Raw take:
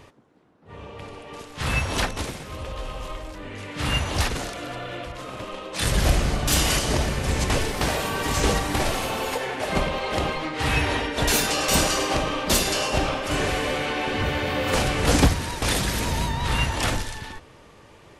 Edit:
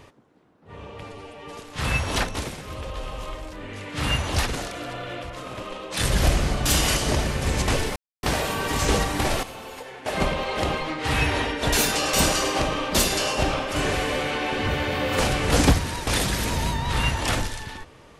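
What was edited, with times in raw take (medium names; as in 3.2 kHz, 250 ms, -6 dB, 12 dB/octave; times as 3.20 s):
1.03–1.39 s: stretch 1.5×
7.78 s: insert silence 0.27 s
8.98–9.61 s: gain -11 dB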